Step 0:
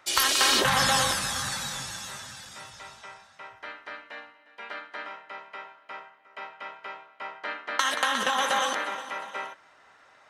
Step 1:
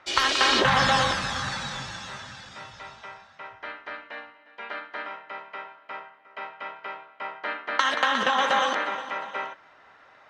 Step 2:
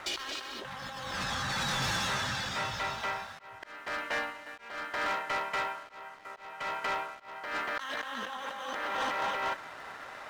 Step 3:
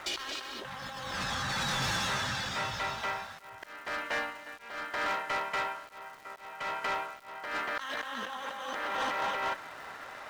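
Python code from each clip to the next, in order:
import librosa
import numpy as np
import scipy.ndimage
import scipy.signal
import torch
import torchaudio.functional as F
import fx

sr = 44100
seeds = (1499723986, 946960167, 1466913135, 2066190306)

y1 = fx.air_absorb(x, sr, metres=150.0)
y1 = y1 * librosa.db_to_amplitude(4.0)
y2 = fx.over_compress(y1, sr, threshold_db=-36.0, ratio=-1.0)
y2 = fx.leveller(y2, sr, passes=3)
y2 = fx.auto_swell(y2, sr, attack_ms=443.0)
y2 = y2 * librosa.db_to_amplitude(-8.0)
y3 = fx.dmg_crackle(y2, sr, seeds[0], per_s=330.0, level_db=-47.0)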